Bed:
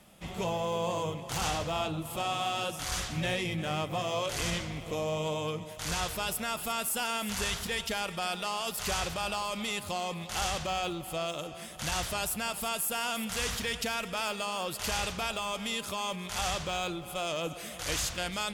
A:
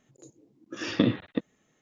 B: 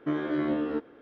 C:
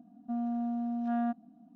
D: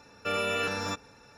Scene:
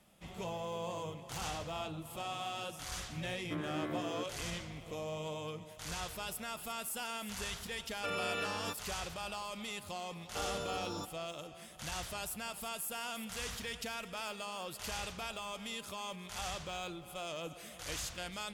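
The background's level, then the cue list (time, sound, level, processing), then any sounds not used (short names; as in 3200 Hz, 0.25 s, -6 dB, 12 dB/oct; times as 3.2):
bed -8.5 dB
3.44 add B -8 dB + low shelf 240 Hz -11.5 dB
7.78 add D -8 dB
10.1 add D -8.5 dB + Butterworth band-stop 2100 Hz, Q 0.96
not used: A, C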